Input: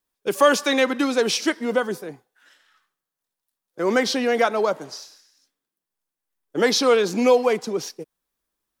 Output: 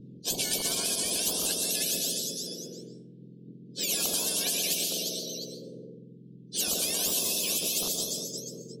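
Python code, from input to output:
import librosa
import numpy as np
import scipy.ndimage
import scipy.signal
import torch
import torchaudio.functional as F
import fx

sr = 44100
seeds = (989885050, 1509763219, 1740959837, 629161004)

p1 = fx.octave_mirror(x, sr, pivot_hz=1600.0)
p2 = scipy.signal.sosfilt(scipy.signal.ellip(3, 1.0, 40, [440.0, 3600.0], 'bandstop', fs=sr, output='sos'), p1)
p3 = fx.hum_notches(p2, sr, base_hz=50, count=3)
p4 = fx.over_compress(p3, sr, threshold_db=-30.0, ratio=-0.5)
p5 = p3 + F.gain(torch.from_numpy(p4), 0.0).numpy()
p6 = fx.dynamic_eq(p5, sr, hz=690.0, q=1.6, threshold_db=-43.0, ratio=4.0, max_db=5)
p7 = fx.env_lowpass(p6, sr, base_hz=2500.0, full_db=-18.5)
p8 = p7 + fx.echo_feedback(p7, sr, ms=355, feedback_pct=21, wet_db=-19.0, dry=0)
p9 = fx.rev_plate(p8, sr, seeds[0], rt60_s=0.6, hf_ratio=0.55, predelay_ms=115, drr_db=9.0)
p10 = fx.spectral_comp(p9, sr, ratio=10.0)
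y = F.gain(torch.from_numpy(p10), -2.5).numpy()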